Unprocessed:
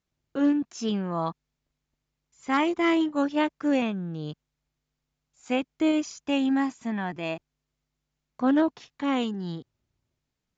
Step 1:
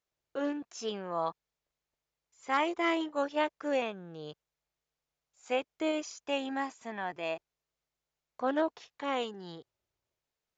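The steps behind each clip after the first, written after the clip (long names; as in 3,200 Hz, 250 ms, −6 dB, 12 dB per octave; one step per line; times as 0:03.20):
low shelf with overshoot 340 Hz −9.5 dB, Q 1.5
level −4 dB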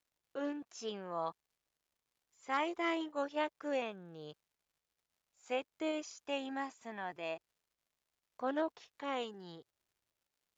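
surface crackle 230 per second −63 dBFS
level −5.5 dB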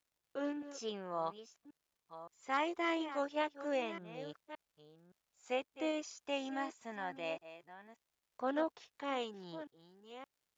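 delay that plays each chunk backwards 569 ms, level −12.5 dB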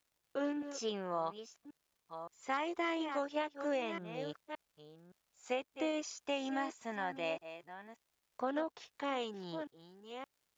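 downward compressor 6 to 1, threshold −36 dBFS, peak gain reduction 7.5 dB
level +4.5 dB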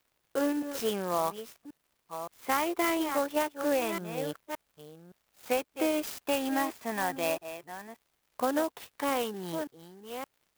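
converter with an unsteady clock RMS 0.043 ms
level +7.5 dB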